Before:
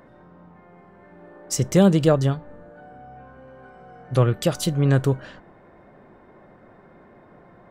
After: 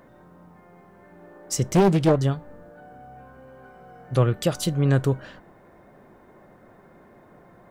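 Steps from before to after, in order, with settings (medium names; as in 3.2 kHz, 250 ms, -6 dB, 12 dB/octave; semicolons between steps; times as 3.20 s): bit crusher 12-bit; 1.73–2.21 s: loudspeaker Doppler distortion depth 0.67 ms; trim -1.5 dB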